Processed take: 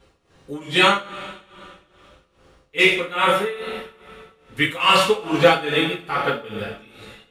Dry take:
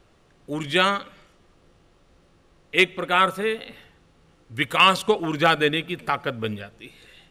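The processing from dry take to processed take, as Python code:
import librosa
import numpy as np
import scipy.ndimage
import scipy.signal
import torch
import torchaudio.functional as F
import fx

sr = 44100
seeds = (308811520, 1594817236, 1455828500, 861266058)

y = fx.rev_double_slope(x, sr, seeds[0], early_s=0.55, late_s=2.7, knee_db=-18, drr_db=-8.5)
y = y * (1.0 - 0.83 / 2.0 + 0.83 / 2.0 * np.cos(2.0 * np.pi * 2.4 * (np.arange(len(y)) / sr)))
y = F.gain(torch.from_numpy(y), -2.5).numpy()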